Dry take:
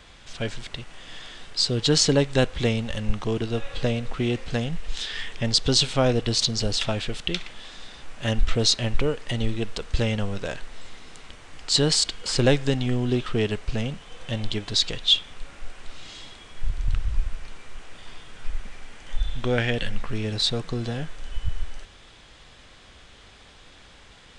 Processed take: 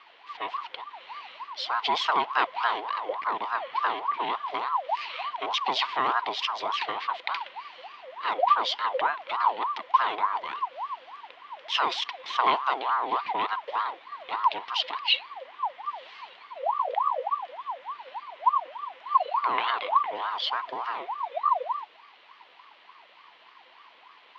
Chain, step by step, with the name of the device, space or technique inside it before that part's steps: voice changer toy (ring modulator with a swept carrier 850 Hz, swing 40%, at 3.4 Hz; speaker cabinet 430–3800 Hz, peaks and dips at 560 Hz -9 dB, 1000 Hz +7 dB, 2000 Hz +5 dB, 3100 Hz +5 dB); gain -3 dB

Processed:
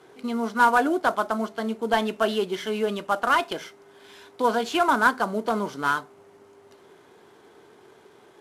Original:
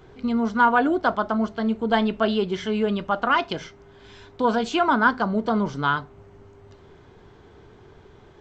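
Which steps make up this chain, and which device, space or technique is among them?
early wireless headset (HPF 290 Hz 12 dB/oct; CVSD 64 kbps)

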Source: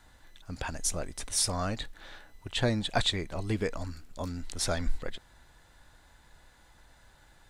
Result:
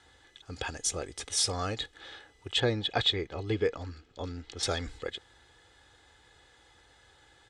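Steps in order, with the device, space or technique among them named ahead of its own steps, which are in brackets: car door speaker (speaker cabinet 89–8800 Hz, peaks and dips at 150 Hz -5 dB, 460 Hz +3 dB, 920 Hz -4 dB, 3300 Hz +6 dB); comb 2.4 ms, depth 52%; 2.6–4.63 air absorption 120 m

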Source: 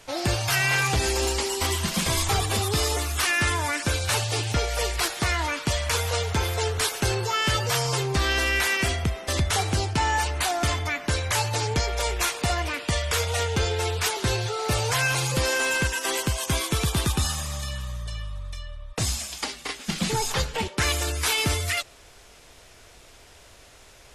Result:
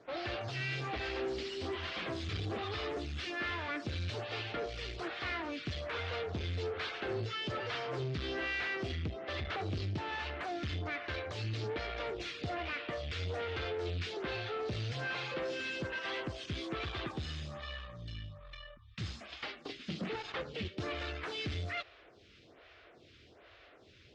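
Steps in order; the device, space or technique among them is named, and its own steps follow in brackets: 18.77–19.21 elliptic band-stop 230–890 Hz, stop band 40 dB; vibe pedal into a guitar amplifier (photocell phaser 1.2 Hz; tube stage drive 32 dB, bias 0.4; speaker cabinet 77–4000 Hz, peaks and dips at 92 Hz +3 dB, 330 Hz +5 dB, 920 Hz -8 dB); gain -1.5 dB

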